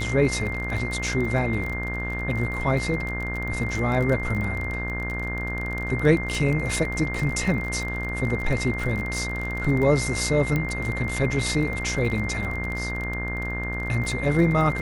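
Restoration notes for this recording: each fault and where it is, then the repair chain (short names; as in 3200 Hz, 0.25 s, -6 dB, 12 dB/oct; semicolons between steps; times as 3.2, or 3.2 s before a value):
buzz 60 Hz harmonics 34 -31 dBFS
crackle 27/s -28 dBFS
tone 2100 Hz -30 dBFS
10.56 pop -13 dBFS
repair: de-click; de-hum 60 Hz, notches 34; notch 2100 Hz, Q 30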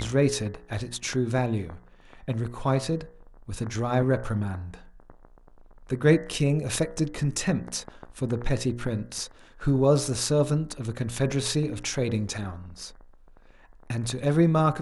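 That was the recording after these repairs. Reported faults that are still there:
none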